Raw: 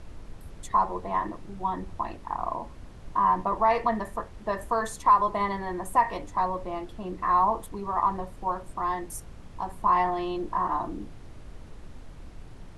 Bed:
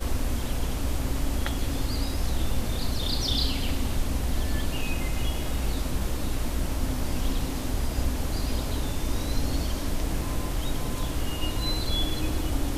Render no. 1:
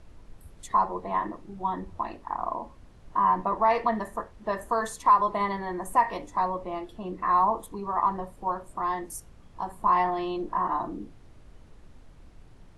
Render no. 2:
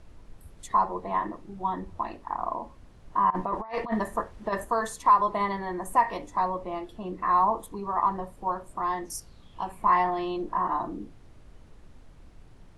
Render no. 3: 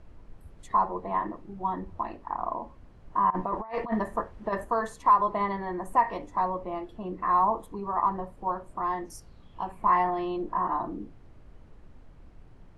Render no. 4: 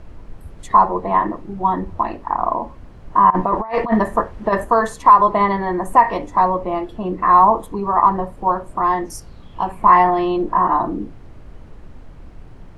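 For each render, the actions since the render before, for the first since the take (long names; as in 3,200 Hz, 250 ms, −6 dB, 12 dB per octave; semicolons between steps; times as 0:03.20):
noise reduction from a noise print 7 dB
0:03.30–0:04.65: compressor whose output falls as the input rises −28 dBFS, ratio −0.5; 0:09.04–0:09.95: parametric band 6,200 Hz → 1,900 Hz +14.5 dB 0.37 octaves
high-shelf EQ 3,700 Hz −12 dB; notch filter 3,600 Hz, Q 30
level +12 dB; brickwall limiter −1 dBFS, peak gain reduction 2 dB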